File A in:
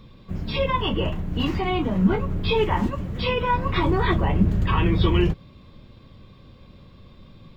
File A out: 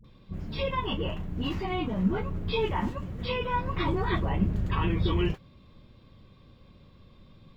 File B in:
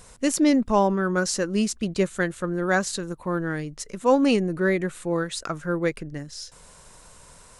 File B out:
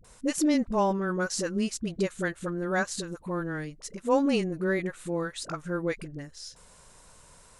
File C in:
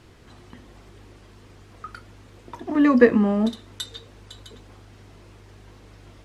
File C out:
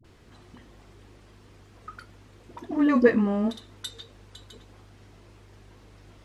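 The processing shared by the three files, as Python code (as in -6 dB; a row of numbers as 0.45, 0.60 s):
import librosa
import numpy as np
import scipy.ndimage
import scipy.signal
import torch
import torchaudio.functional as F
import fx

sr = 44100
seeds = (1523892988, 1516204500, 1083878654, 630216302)

y = fx.dispersion(x, sr, late='highs', ms=45.0, hz=480.0)
y = y * 10.0 ** (-30 / 20.0) / np.sqrt(np.mean(np.square(y)))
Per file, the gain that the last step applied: -7.0, -5.0, -4.0 dB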